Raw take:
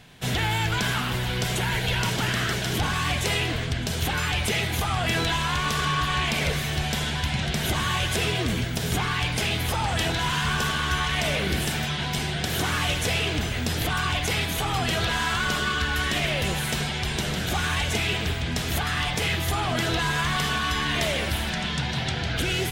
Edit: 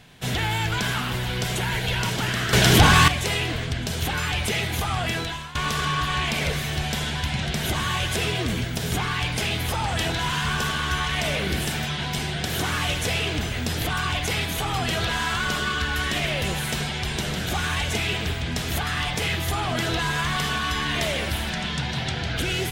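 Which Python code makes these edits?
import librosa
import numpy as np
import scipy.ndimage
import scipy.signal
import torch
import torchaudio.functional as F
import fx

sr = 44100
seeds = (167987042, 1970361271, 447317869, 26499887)

y = fx.edit(x, sr, fx.clip_gain(start_s=2.53, length_s=0.55, db=11.0),
    fx.fade_out_to(start_s=4.99, length_s=0.56, floor_db=-17.0), tone=tone)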